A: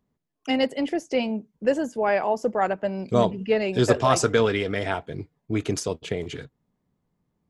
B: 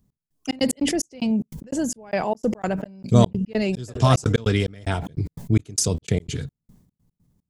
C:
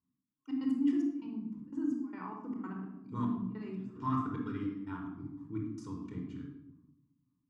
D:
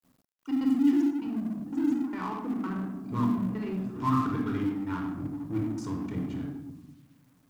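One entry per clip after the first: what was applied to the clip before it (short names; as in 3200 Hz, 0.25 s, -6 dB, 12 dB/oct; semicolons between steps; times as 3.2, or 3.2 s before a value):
tone controls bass +15 dB, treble +14 dB; step gate "x..xx.x.x" 148 bpm -60 dB; sustainer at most 72 dB/s; gain -2 dB
soft clip -5.5 dBFS, distortion -20 dB; double band-pass 560 Hz, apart 2 oct; shoebox room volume 2800 m³, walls furnished, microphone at 4.6 m; gain -8 dB
G.711 law mismatch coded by mu; gain +5.5 dB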